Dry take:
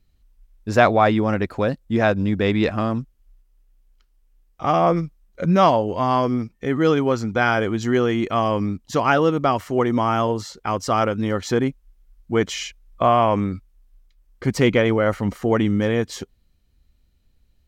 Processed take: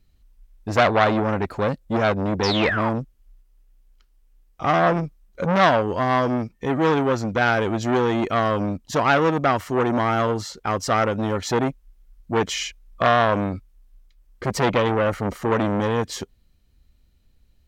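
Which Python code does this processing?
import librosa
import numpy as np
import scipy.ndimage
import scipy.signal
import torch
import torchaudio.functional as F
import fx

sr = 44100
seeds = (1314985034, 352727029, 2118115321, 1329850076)

y = fx.spec_paint(x, sr, seeds[0], shape='fall', start_s=2.43, length_s=0.47, low_hz=790.0, high_hz=5700.0, level_db=-24.0)
y = fx.transformer_sat(y, sr, knee_hz=1900.0)
y = F.gain(torch.from_numpy(y), 2.0).numpy()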